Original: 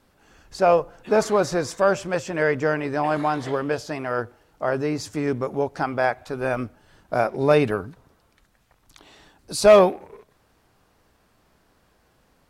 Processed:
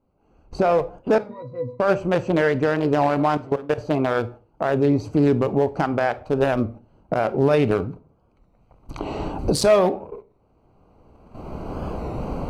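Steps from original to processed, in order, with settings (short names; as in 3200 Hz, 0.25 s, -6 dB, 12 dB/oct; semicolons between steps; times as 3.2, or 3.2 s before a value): Wiener smoothing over 25 samples; recorder AGC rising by 15 dB/s; gate -41 dBFS, range -12 dB; 3.37–3.78 level quantiser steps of 22 dB; limiter -15.5 dBFS, peak gain reduction 10 dB; 1.19–1.8 octave resonator B, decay 0.19 s; on a send at -14.5 dB: reverb RT60 0.35 s, pre-delay 21 ms; on the sum: record warp 33 1/3 rpm, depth 100 cents; gain +5.5 dB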